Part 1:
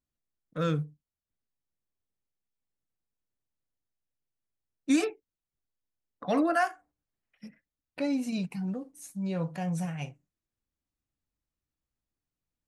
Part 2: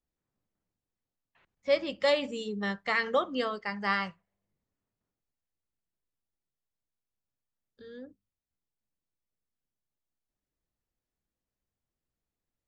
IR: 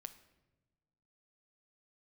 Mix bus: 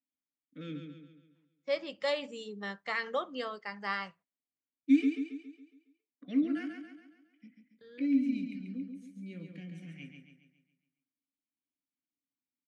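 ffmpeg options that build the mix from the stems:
-filter_complex "[0:a]asplit=3[a][b][c];[a]bandpass=f=270:t=q:w=8,volume=0dB[d];[b]bandpass=f=2.29k:t=q:w=8,volume=-6dB[e];[c]bandpass=f=3.01k:t=q:w=8,volume=-9dB[f];[d][e][f]amix=inputs=3:normalize=0,volume=3dB,asplit=2[g][h];[h]volume=-6dB[i];[1:a]agate=range=-16dB:threshold=-53dB:ratio=16:detection=peak,highpass=f=250:p=1,volume=-5.5dB[j];[i]aecho=0:1:138|276|414|552|690|828|966:1|0.47|0.221|0.104|0.0488|0.0229|0.0108[k];[g][j][k]amix=inputs=3:normalize=0,highpass=92"

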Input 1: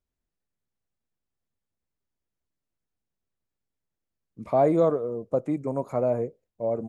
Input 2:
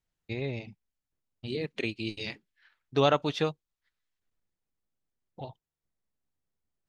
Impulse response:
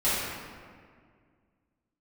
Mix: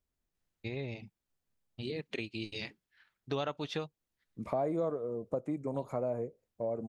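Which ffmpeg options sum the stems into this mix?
-filter_complex "[0:a]volume=-0.5dB[a];[1:a]adelay=350,volume=-2.5dB[b];[a][b]amix=inputs=2:normalize=0,acompressor=threshold=-35dB:ratio=2.5"

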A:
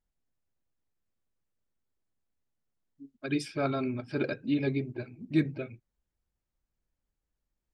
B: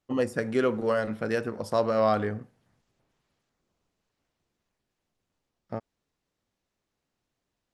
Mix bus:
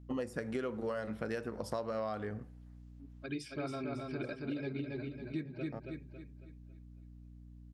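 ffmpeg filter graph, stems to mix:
-filter_complex "[0:a]volume=-7.5dB,asplit=3[a][b][c];[b]volume=-4dB[d];[1:a]aeval=exprs='val(0)+0.00398*(sin(2*PI*60*n/s)+sin(2*PI*2*60*n/s)/2+sin(2*PI*3*60*n/s)/3+sin(2*PI*4*60*n/s)/4+sin(2*PI*5*60*n/s)/5)':c=same,volume=-3.5dB[e];[c]apad=whole_len=341098[f];[e][f]sidechaincompress=threshold=-47dB:ratio=8:attack=5.2:release=366[g];[d]aecho=0:1:275|550|825|1100|1375|1650:1|0.4|0.16|0.064|0.0256|0.0102[h];[a][g][h]amix=inputs=3:normalize=0,acompressor=threshold=-34dB:ratio=6"

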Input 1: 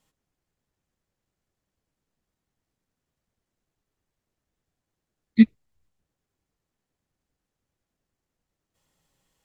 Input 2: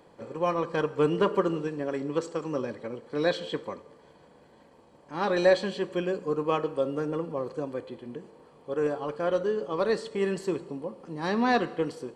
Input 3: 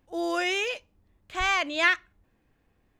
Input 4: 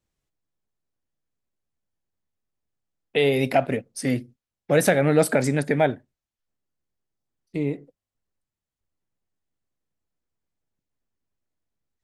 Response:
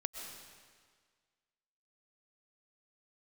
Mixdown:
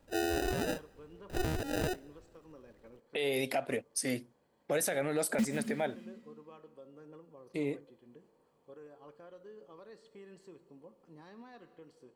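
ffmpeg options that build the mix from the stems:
-filter_complex "[0:a]acrusher=bits=3:mix=0:aa=0.000001,asplit=2[a][b];[b]adelay=7.5,afreqshift=0.6[c];[a][c]amix=inputs=2:normalize=1,volume=-6dB,asplit=2[d][e];[e]volume=-4.5dB[f];[1:a]alimiter=level_in=3dB:limit=-24dB:level=0:latency=1:release=436,volume=-3dB,volume=-16.5dB[g];[2:a]acompressor=threshold=-30dB:ratio=12,acrusher=samples=40:mix=1:aa=0.000001,volume=1dB,asplit=2[h][i];[i]volume=-23.5dB[j];[3:a]bass=f=250:g=-10,treble=f=4k:g=8,volume=-5.5dB[k];[4:a]atrim=start_sample=2205[l];[f][j]amix=inputs=2:normalize=0[m];[m][l]afir=irnorm=-1:irlink=0[n];[d][g][h][k][n]amix=inputs=5:normalize=0,alimiter=limit=-22dB:level=0:latency=1:release=172"

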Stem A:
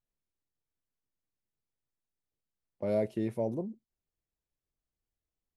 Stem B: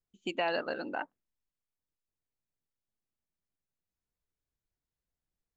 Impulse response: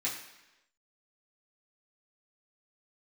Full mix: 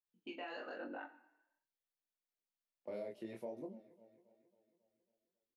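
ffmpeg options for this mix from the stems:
-filter_complex "[0:a]aemphasis=mode=production:type=75kf,adelay=50,volume=-4.5dB,asplit=2[a][b];[b]volume=-23dB[c];[1:a]afwtdn=0.00282,alimiter=level_in=3.5dB:limit=-24dB:level=0:latency=1,volume=-3.5dB,flanger=delay=16.5:depth=4.1:speed=0.52,volume=-1.5dB,asplit=2[d][e];[e]volume=-11.5dB[f];[2:a]atrim=start_sample=2205[g];[f][g]afir=irnorm=-1:irlink=0[h];[c]aecho=0:1:273|546|819|1092|1365|1638|1911|2184:1|0.56|0.314|0.176|0.0983|0.0551|0.0308|0.0173[i];[a][d][h][i]amix=inputs=4:normalize=0,acrossover=split=220 4500:gain=0.158 1 0.178[j][k][l];[j][k][l]amix=inputs=3:normalize=0,flanger=delay=20:depth=6.9:speed=1.1,acompressor=threshold=-41dB:ratio=6"

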